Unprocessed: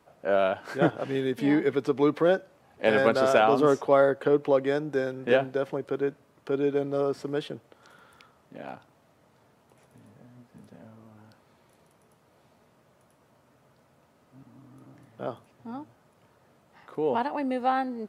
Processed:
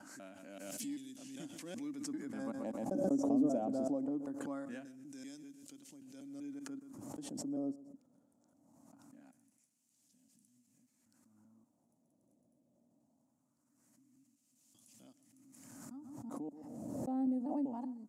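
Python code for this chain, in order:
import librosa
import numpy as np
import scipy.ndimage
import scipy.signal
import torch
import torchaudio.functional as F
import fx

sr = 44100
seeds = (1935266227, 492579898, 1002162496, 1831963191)

y = fx.block_reorder(x, sr, ms=194.0, group=4)
y = fx.wah_lfo(y, sr, hz=0.22, low_hz=570.0, high_hz=3100.0, q=2.1)
y = fx.curve_eq(y, sr, hz=(160.0, 280.0, 410.0, 580.0, 1400.0, 3500.0, 7000.0), db=(0, 8, -21, -17, -28, -20, 13))
y = fx.echo_feedback(y, sr, ms=129, feedback_pct=22, wet_db=-19.0)
y = fx.pre_swell(y, sr, db_per_s=30.0)
y = y * 10.0 ** (2.5 / 20.0)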